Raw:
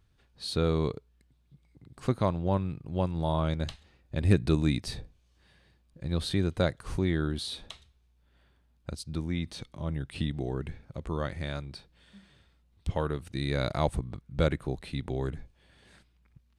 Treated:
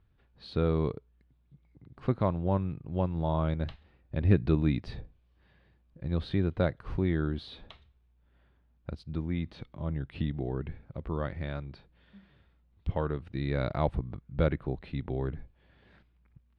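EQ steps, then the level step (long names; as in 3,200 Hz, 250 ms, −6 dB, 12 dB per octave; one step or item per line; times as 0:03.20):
high-frequency loss of the air 340 metres
0.0 dB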